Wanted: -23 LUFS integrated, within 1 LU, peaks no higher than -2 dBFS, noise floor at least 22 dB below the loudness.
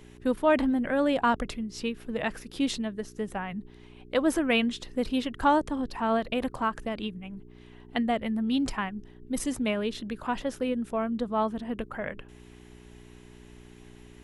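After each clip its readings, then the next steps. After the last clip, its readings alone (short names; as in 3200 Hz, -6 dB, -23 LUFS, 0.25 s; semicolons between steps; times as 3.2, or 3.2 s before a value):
hum 60 Hz; harmonics up to 420 Hz; hum level -49 dBFS; loudness -29.0 LUFS; peak -12.0 dBFS; loudness target -23.0 LUFS
-> de-hum 60 Hz, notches 7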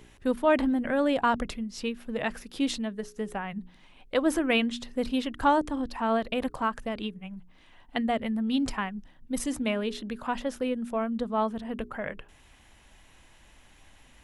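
hum none; loudness -29.5 LUFS; peak -12.0 dBFS; loudness target -23.0 LUFS
-> gain +6.5 dB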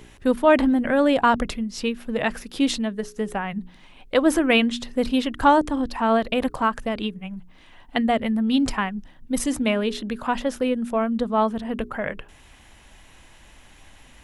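loudness -23.0 LUFS; peak -5.5 dBFS; noise floor -51 dBFS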